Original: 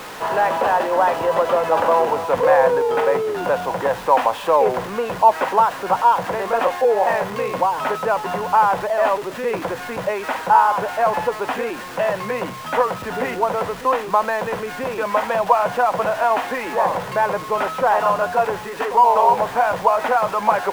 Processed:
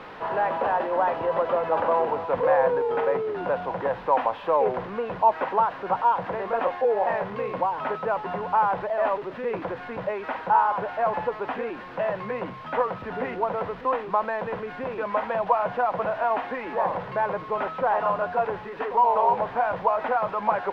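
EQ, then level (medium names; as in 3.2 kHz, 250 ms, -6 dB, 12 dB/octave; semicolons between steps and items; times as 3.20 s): distance through air 340 m; -5.0 dB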